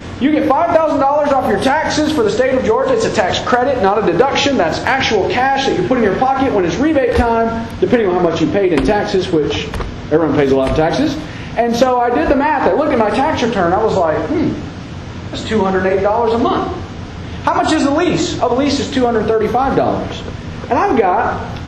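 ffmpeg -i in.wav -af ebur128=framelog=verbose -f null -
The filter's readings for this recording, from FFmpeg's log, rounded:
Integrated loudness:
  I:         -14.3 LUFS
  Threshold: -24.5 LUFS
Loudness range:
  LRA:         2.3 LU
  Threshold: -34.6 LUFS
  LRA low:   -15.8 LUFS
  LRA high:  -13.6 LUFS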